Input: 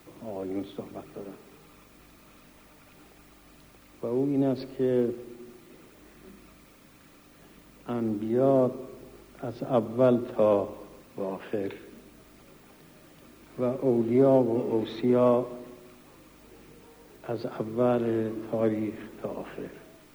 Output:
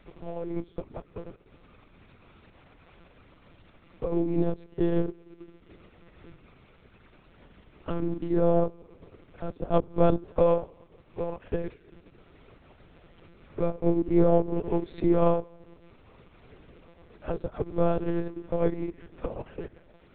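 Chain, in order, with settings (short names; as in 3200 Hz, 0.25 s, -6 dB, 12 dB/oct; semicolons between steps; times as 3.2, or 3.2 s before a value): transient shaper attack +3 dB, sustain -11 dB; monotone LPC vocoder at 8 kHz 170 Hz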